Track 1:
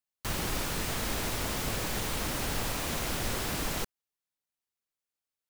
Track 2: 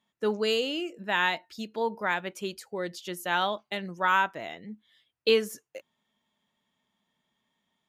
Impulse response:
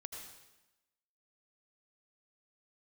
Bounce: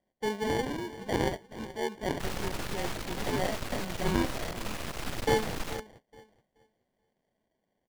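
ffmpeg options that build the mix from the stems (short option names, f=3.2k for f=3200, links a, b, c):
-filter_complex "[0:a]aeval=exprs='max(val(0),0)':c=same,adelay=1950,volume=1dB[a];[1:a]aemphasis=mode=production:type=cd,acrusher=samples=34:mix=1:aa=0.000001,volume=-3.5dB,asplit=2[b][c];[c]volume=-15.5dB,aecho=0:1:428|856|1284|1712:1|0.22|0.0484|0.0106[d];[a][b][d]amix=inputs=3:normalize=0,highshelf=f=6.8k:g=-9.5"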